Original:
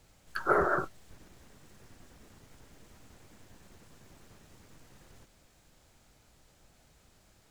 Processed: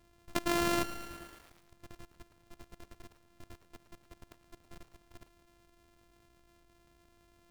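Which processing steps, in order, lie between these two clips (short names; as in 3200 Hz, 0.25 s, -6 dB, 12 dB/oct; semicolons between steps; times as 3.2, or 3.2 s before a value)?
sample sorter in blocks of 128 samples; level quantiser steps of 18 dB; lo-fi delay 0.111 s, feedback 80%, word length 9-bit, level -13 dB; gain +6.5 dB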